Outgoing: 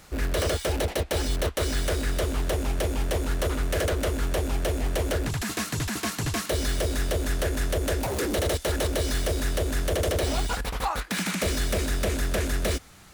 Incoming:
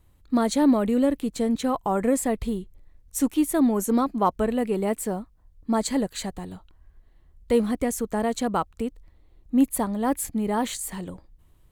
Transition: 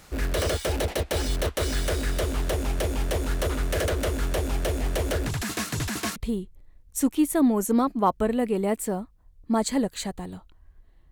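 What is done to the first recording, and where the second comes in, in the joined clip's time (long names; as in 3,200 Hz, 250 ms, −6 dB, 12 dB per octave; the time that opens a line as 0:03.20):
outgoing
0:06.16: continue with incoming from 0:02.35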